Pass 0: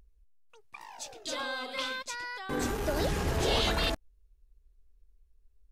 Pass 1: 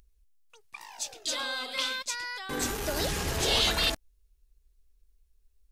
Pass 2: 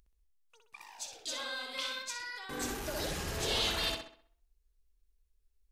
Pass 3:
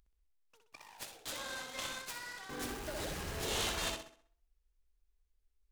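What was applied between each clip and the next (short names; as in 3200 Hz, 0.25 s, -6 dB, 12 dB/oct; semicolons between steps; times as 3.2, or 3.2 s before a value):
high shelf 2100 Hz +11 dB; gain -2.5 dB
tape echo 63 ms, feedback 44%, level -3.5 dB, low-pass 4600 Hz; gain -7.5 dB
noise-modulated delay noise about 2800 Hz, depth 0.039 ms; gain -3.5 dB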